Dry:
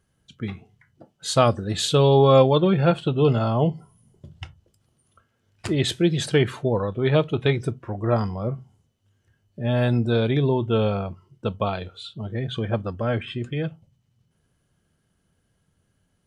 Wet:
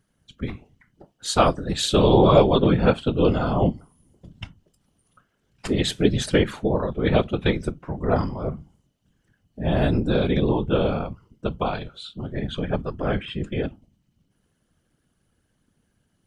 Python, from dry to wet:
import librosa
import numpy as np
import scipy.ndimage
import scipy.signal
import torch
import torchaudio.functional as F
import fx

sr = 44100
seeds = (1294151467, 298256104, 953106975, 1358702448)

y = fx.whisperise(x, sr, seeds[0])